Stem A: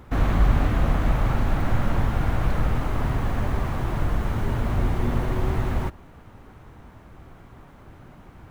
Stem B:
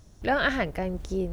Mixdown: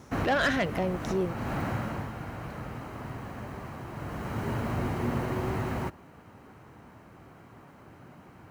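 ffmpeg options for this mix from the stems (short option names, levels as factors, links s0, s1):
-filter_complex "[0:a]bandreject=f=3500:w=8.3,volume=1.88,afade=t=out:st=1.63:d=0.5:silence=0.421697,afade=t=in:st=3.92:d=0.56:silence=0.398107[s0];[1:a]asoftclip=type=tanh:threshold=0.075,volume=1.33,asplit=2[s1][s2];[s2]apad=whole_len=375016[s3];[s0][s3]sidechaincompress=threshold=0.0224:ratio=8:attack=16:release=344[s4];[s4][s1]amix=inputs=2:normalize=0,highpass=120"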